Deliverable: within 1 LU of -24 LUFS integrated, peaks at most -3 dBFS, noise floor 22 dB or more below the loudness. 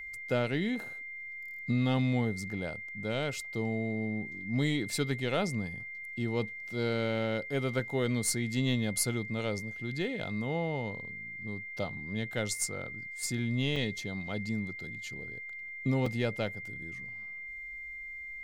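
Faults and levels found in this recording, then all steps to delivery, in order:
dropouts 2; longest dropout 3.7 ms; steady tone 2100 Hz; tone level -40 dBFS; loudness -33.5 LUFS; peak -16.5 dBFS; loudness target -24.0 LUFS
-> interpolate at 13.76/16.06, 3.7 ms; notch 2100 Hz, Q 30; gain +9.5 dB

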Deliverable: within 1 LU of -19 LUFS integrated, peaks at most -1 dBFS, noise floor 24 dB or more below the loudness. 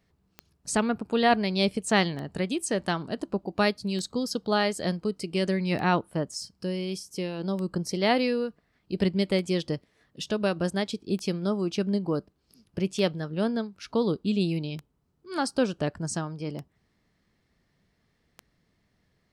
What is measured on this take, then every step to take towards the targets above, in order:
clicks 11; loudness -28.5 LUFS; peak -9.0 dBFS; loudness target -19.0 LUFS
-> de-click; gain +9.5 dB; limiter -1 dBFS

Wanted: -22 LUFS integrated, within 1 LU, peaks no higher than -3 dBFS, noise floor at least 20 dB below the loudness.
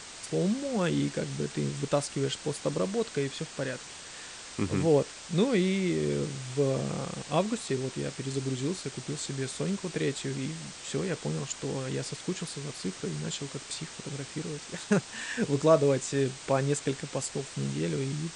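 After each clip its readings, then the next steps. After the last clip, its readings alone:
noise floor -45 dBFS; noise floor target -51 dBFS; loudness -31.0 LUFS; peak -11.0 dBFS; loudness target -22.0 LUFS
-> noise print and reduce 6 dB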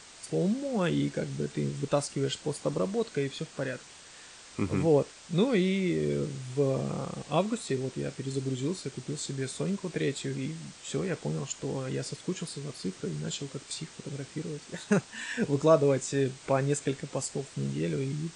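noise floor -51 dBFS; loudness -31.0 LUFS; peak -11.0 dBFS; loudness target -22.0 LUFS
-> gain +9 dB; limiter -3 dBFS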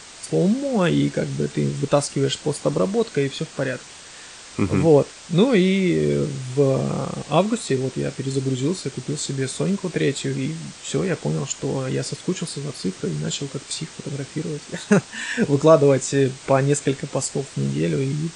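loudness -22.0 LUFS; peak -3.0 dBFS; noise floor -42 dBFS

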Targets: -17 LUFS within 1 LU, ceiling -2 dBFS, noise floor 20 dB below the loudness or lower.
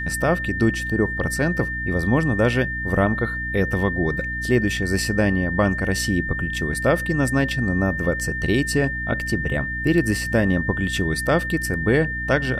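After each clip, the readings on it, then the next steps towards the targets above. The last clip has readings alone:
hum 60 Hz; harmonics up to 300 Hz; hum level -29 dBFS; steady tone 1800 Hz; tone level -26 dBFS; loudness -21.5 LUFS; peak -5.5 dBFS; loudness target -17.0 LUFS
-> de-hum 60 Hz, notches 5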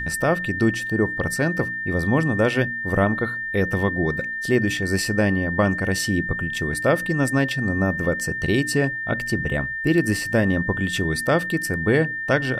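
hum none; steady tone 1800 Hz; tone level -26 dBFS
-> notch 1800 Hz, Q 30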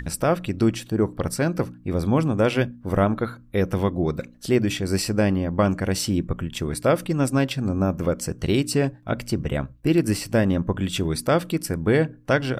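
steady tone none; loudness -23.5 LUFS; peak -6.5 dBFS; loudness target -17.0 LUFS
-> gain +6.5 dB; limiter -2 dBFS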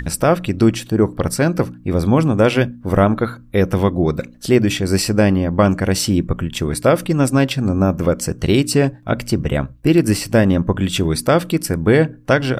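loudness -17.0 LUFS; peak -2.0 dBFS; noise floor -42 dBFS

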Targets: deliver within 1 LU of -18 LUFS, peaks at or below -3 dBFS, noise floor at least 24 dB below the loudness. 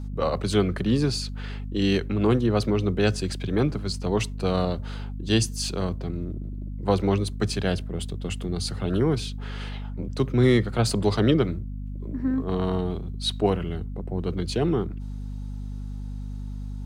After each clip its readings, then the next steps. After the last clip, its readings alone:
hum 50 Hz; harmonics up to 250 Hz; hum level -30 dBFS; loudness -26.0 LUFS; peak -6.5 dBFS; loudness target -18.0 LUFS
-> de-hum 50 Hz, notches 5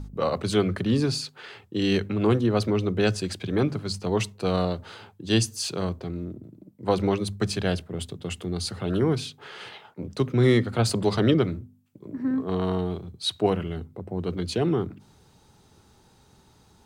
hum none; loudness -26.0 LUFS; peak -8.0 dBFS; loudness target -18.0 LUFS
-> gain +8 dB; limiter -3 dBFS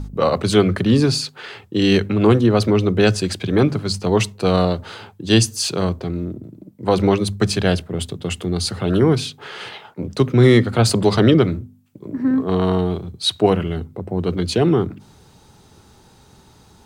loudness -18.5 LUFS; peak -3.0 dBFS; noise floor -50 dBFS

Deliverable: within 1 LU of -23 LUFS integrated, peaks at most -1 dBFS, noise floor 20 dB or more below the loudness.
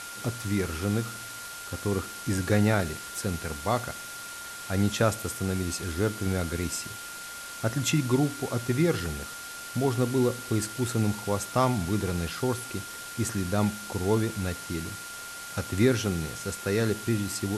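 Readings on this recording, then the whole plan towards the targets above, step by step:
steady tone 1400 Hz; tone level -41 dBFS; noise floor -40 dBFS; noise floor target -49 dBFS; loudness -29.0 LUFS; peak -10.0 dBFS; loudness target -23.0 LUFS
-> notch 1400 Hz, Q 30; denoiser 9 dB, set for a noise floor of -40 dBFS; gain +6 dB

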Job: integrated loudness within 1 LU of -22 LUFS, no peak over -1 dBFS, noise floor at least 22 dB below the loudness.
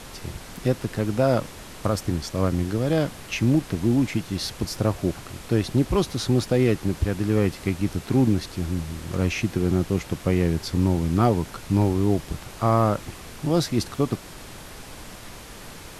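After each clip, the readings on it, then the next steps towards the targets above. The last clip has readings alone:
noise floor -41 dBFS; noise floor target -46 dBFS; loudness -24.0 LUFS; peak -6.5 dBFS; loudness target -22.0 LUFS
-> noise print and reduce 6 dB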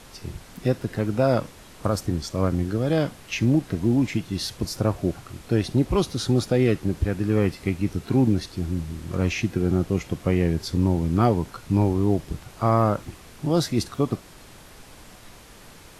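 noise floor -47 dBFS; loudness -24.5 LUFS; peak -7.0 dBFS; loudness target -22.0 LUFS
-> gain +2.5 dB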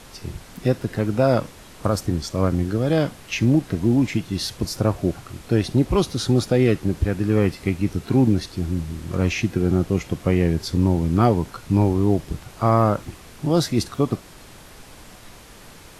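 loudness -22.0 LUFS; peak -4.5 dBFS; noise floor -44 dBFS

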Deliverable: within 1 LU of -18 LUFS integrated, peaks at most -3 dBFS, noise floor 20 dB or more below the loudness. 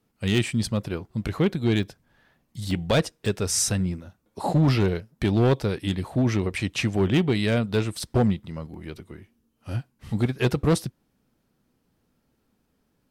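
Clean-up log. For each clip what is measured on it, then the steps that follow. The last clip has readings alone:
clipped 0.9%; flat tops at -14.5 dBFS; dropouts 5; longest dropout 1.2 ms; loudness -25.0 LUFS; peak -14.5 dBFS; loudness target -18.0 LUFS
-> clip repair -14.5 dBFS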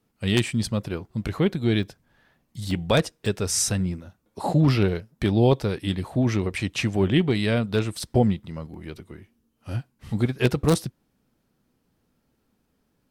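clipped 0.0%; dropouts 5; longest dropout 1.2 ms
-> interpolate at 1.83/2.71/3.26/8/8.74, 1.2 ms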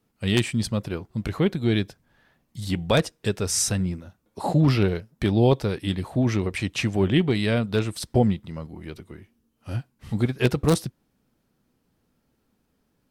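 dropouts 0; loudness -24.5 LUFS; peak -5.5 dBFS; loudness target -18.0 LUFS
-> gain +6.5 dB; limiter -3 dBFS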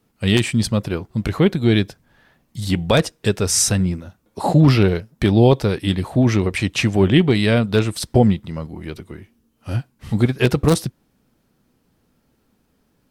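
loudness -18.0 LUFS; peak -3.0 dBFS; noise floor -65 dBFS

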